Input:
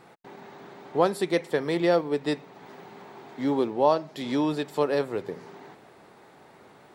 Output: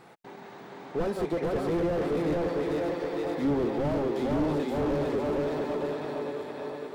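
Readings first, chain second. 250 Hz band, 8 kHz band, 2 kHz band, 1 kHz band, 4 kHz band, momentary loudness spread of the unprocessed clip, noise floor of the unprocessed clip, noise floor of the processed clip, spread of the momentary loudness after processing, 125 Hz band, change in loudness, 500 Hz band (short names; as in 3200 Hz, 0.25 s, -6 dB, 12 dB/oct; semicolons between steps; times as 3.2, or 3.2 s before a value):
+0.5 dB, n/a, -3.5 dB, -4.5 dB, -6.5 dB, 22 LU, -54 dBFS, -47 dBFS, 10 LU, +3.5 dB, -3.0 dB, -1.5 dB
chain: regenerating reverse delay 0.28 s, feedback 78%, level -10 dB; tape echo 0.455 s, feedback 55%, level -3 dB, low-pass 4200 Hz; slew limiter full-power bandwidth 24 Hz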